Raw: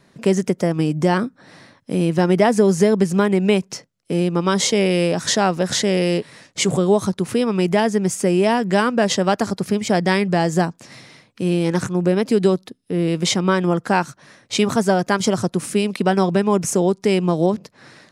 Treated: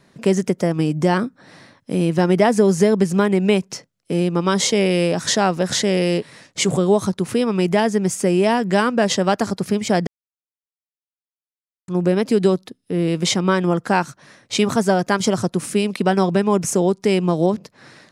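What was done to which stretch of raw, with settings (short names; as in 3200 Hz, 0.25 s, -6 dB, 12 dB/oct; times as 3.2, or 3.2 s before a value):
10.07–11.88 mute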